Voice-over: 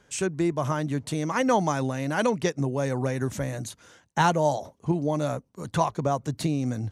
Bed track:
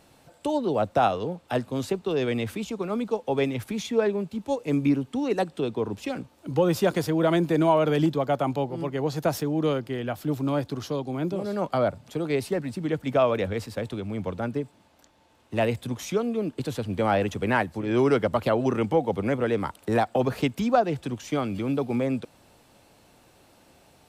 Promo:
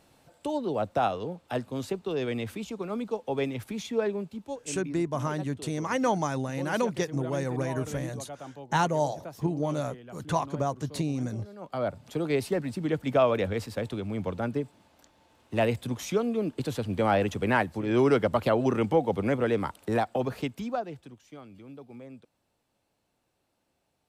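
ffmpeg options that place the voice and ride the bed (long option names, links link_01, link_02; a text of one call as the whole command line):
ffmpeg -i stem1.wav -i stem2.wav -filter_complex "[0:a]adelay=4550,volume=-3.5dB[link_01];[1:a]volume=11.5dB,afade=type=out:start_time=4.18:duration=0.6:silence=0.237137,afade=type=in:start_time=11.59:duration=0.5:silence=0.158489,afade=type=out:start_time=19.51:duration=1.68:silence=0.11885[link_02];[link_01][link_02]amix=inputs=2:normalize=0" out.wav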